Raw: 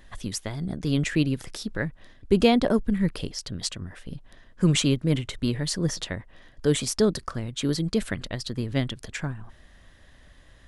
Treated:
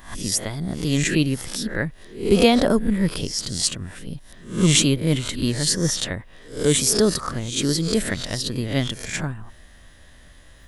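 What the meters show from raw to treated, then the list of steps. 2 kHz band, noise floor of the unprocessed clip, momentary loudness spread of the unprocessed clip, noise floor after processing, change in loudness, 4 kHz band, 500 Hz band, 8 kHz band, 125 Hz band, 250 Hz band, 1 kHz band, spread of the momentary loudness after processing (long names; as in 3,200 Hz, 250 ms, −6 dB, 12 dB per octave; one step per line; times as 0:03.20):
+5.5 dB, −54 dBFS, 13 LU, −48 dBFS, +5.0 dB, +7.5 dB, +4.0 dB, +11.0 dB, +3.0 dB, +3.5 dB, +4.0 dB, 14 LU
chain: peak hold with a rise ahead of every peak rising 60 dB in 0.42 s
high-shelf EQ 7,900 Hz +12 dB
level +2.5 dB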